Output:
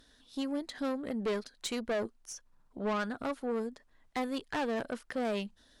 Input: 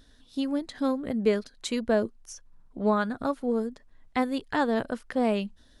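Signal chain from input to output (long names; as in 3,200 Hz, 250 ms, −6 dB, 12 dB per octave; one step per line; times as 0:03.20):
low-shelf EQ 240 Hz −9.5 dB
tube saturation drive 28 dB, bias 0.25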